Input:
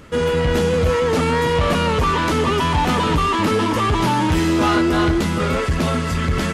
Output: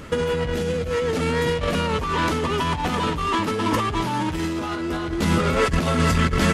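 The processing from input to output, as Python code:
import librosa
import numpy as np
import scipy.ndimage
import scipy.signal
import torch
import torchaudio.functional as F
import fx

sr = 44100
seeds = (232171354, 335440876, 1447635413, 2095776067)

y = fx.peak_eq(x, sr, hz=1000.0, db=-6.5, octaves=0.6, at=(0.53, 1.8))
y = fx.over_compress(y, sr, threshold_db=-21.0, ratio=-0.5)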